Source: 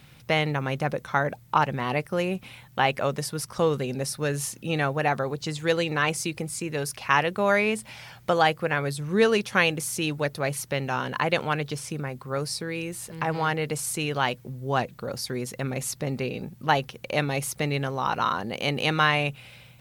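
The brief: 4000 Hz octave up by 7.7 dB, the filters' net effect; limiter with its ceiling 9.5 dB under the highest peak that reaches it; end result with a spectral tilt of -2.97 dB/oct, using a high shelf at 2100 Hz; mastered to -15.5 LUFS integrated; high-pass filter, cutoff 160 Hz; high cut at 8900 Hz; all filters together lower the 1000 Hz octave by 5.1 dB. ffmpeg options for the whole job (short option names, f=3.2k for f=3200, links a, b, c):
-af "highpass=160,lowpass=8.9k,equalizer=f=1k:t=o:g=-8,highshelf=f=2.1k:g=3,equalizer=f=4k:t=o:g=8.5,volume=12.5dB,alimiter=limit=-0.5dB:level=0:latency=1"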